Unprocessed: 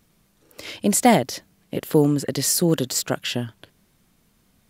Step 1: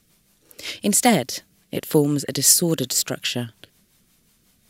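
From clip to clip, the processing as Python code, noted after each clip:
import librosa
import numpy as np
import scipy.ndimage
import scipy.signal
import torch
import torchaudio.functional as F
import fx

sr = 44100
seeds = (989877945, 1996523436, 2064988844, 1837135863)

y = fx.high_shelf(x, sr, hz=2200.0, db=9.0)
y = fx.rotary(y, sr, hz=5.5)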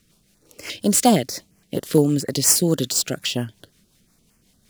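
y = scipy.ndimage.median_filter(x, 3, mode='constant')
y = fx.filter_held_notch(y, sr, hz=8.6, low_hz=840.0, high_hz=3700.0)
y = y * librosa.db_to_amplitude(2.0)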